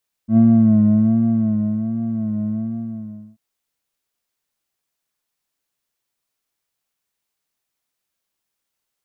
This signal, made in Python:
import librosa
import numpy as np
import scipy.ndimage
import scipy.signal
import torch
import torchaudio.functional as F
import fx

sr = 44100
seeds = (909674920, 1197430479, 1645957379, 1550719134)

y = fx.sub_patch_vibrato(sr, seeds[0], note=57, wave='square', wave2='saw', interval_st=19, detune_cents=16, level2_db=-8.0, sub_db=-9, noise_db=-17.5, kind='lowpass', cutoff_hz=230.0, q=0.77, env_oct=0.5, env_decay_s=0.33, env_sustain_pct=40, attack_ms=90.0, decay_s=1.46, sustain_db=-11, release_s=0.87, note_s=2.22, lfo_hz=1.3, vibrato_cents=69)